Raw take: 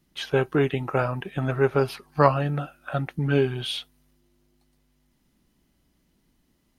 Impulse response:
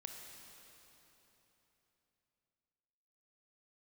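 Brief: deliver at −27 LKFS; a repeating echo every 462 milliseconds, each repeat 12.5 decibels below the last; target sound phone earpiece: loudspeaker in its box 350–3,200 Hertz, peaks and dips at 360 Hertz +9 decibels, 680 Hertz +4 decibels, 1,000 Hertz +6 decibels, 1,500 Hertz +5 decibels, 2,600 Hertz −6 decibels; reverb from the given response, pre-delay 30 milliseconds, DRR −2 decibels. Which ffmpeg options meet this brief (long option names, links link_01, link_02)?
-filter_complex "[0:a]aecho=1:1:462|924|1386:0.237|0.0569|0.0137,asplit=2[link_01][link_02];[1:a]atrim=start_sample=2205,adelay=30[link_03];[link_02][link_03]afir=irnorm=-1:irlink=0,volume=5.5dB[link_04];[link_01][link_04]amix=inputs=2:normalize=0,highpass=350,equalizer=frequency=360:width_type=q:width=4:gain=9,equalizer=frequency=680:width_type=q:width=4:gain=4,equalizer=frequency=1000:width_type=q:width=4:gain=6,equalizer=frequency=1500:width_type=q:width=4:gain=5,equalizer=frequency=2600:width_type=q:width=4:gain=-6,lowpass=frequency=3200:width=0.5412,lowpass=frequency=3200:width=1.3066,volume=-7.5dB"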